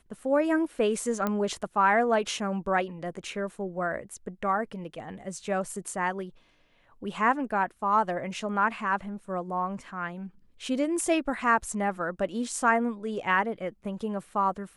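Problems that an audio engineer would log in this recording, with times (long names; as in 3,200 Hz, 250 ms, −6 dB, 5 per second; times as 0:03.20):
0:01.27: click −15 dBFS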